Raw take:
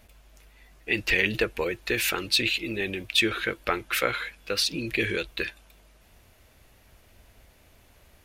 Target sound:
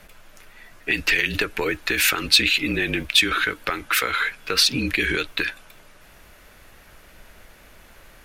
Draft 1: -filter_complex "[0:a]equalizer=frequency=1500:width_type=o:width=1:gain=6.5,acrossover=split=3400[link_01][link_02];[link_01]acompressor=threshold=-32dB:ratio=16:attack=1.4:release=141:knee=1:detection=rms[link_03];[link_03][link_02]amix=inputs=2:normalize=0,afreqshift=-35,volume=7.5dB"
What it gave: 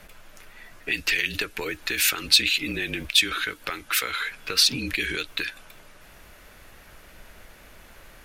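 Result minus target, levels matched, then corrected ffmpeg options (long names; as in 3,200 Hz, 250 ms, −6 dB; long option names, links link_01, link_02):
downward compressor: peak gain reduction +7.5 dB
-filter_complex "[0:a]equalizer=frequency=1500:width_type=o:width=1:gain=6.5,acrossover=split=3400[link_01][link_02];[link_01]acompressor=threshold=-24dB:ratio=16:attack=1.4:release=141:knee=1:detection=rms[link_03];[link_03][link_02]amix=inputs=2:normalize=0,afreqshift=-35,volume=7.5dB"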